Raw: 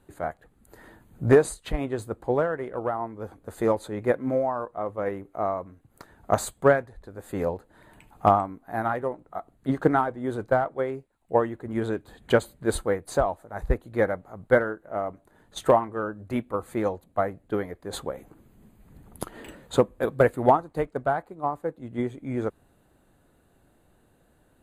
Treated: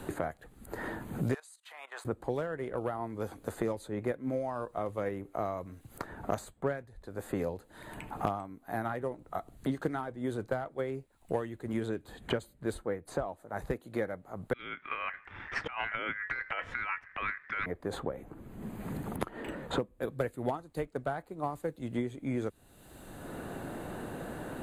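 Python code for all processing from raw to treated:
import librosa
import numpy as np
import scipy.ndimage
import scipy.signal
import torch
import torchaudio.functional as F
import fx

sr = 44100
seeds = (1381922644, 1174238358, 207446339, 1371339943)

y = fx.chain(x, sr, fx.highpass(hz=870.0, slope=24),
    fx.level_steps(step_db=16), at=(1.34, 2.05))
y = fx.chain(y, sr, fx.ring_mod(carrier_hz=1800.0),
    fx.over_compress(threshold_db=-36.0, ratio=-1.0),
    fx.air_absorb(metres=130.0), at=(14.53, 17.66))
y = fx.dynamic_eq(y, sr, hz=940.0, q=0.85, threshold_db=-36.0, ratio=4.0, max_db=-5)
y = fx.band_squash(y, sr, depth_pct=100)
y = y * 10.0 ** (-6.0 / 20.0)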